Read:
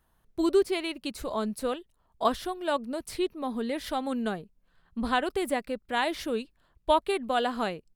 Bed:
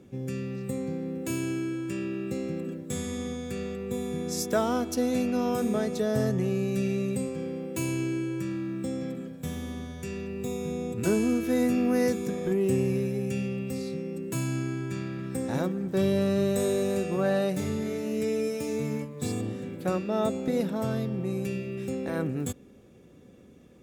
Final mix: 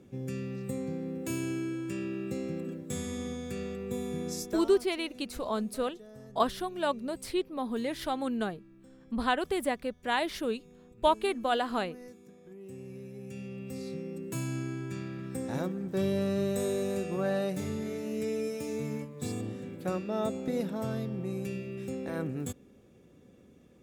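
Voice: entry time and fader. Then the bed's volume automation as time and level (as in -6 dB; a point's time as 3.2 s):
4.15 s, -1.5 dB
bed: 4.28 s -3 dB
4.96 s -23.5 dB
12.49 s -23.5 dB
13.91 s -4.5 dB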